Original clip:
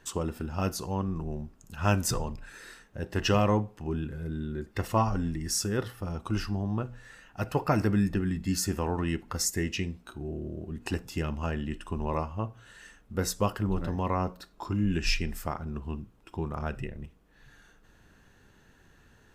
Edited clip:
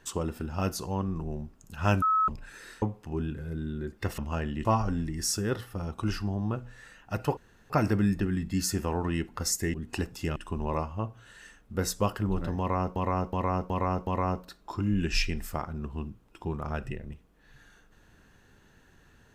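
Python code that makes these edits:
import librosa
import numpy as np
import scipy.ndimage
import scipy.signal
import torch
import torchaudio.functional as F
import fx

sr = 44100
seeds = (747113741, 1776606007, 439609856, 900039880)

y = fx.edit(x, sr, fx.bleep(start_s=2.02, length_s=0.26, hz=1290.0, db=-21.0),
    fx.cut(start_s=2.82, length_s=0.74),
    fx.insert_room_tone(at_s=7.64, length_s=0.33),
    fx.cut(start_s=9.68, length_s=0.99),
    fx.move(start_s=11.29, length_s=0.47, to_s=4.92),
    fx.repeat(start_s=13.99, length_s=0.37, count=5), tone=tone)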